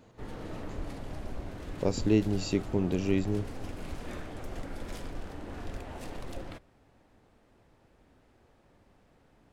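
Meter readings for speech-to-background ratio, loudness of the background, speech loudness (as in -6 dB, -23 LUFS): 12.5 dB, -42.5 LUFS, -30.0 LUFS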